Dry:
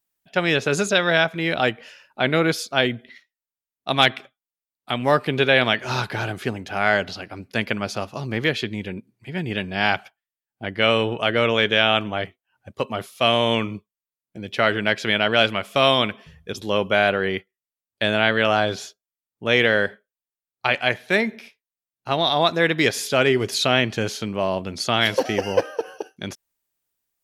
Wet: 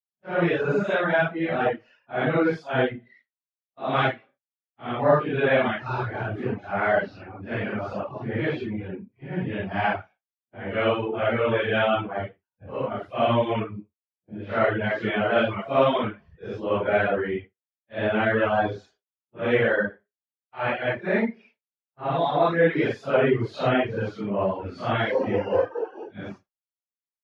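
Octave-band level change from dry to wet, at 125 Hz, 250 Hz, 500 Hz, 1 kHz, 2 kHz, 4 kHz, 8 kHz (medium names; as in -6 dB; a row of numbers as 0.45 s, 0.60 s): -1.5 dB, -1.5 dB, -1.0 dB, -2.5 dB, -6.0 dB, -15.0 dB, under -25 dB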